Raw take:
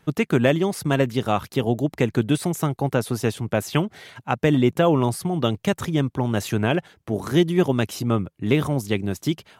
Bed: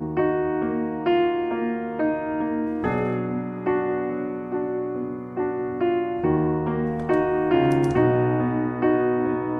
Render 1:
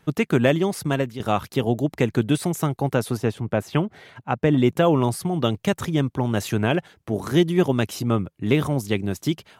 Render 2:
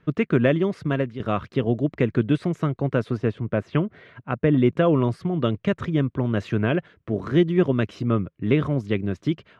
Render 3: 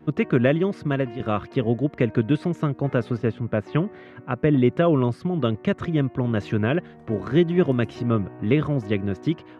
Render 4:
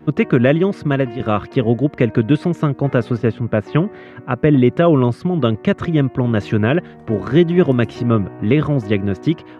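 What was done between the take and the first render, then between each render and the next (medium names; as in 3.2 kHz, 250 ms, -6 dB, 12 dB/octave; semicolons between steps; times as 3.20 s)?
0.67–1.20 s: fade out equal-power, to -11.5 dB; 3.17–4.58 s: treble shelf 3.2 kHz -11 dB
low-pass 2.4 kHz 12 dB/octave; peaking EQ 820 Hz -14.5 dB 0.27 oct
add bed -19.5 dB
trim +6.5 dB; peak limiter -2 dBFS, peak gain reduction 2 dB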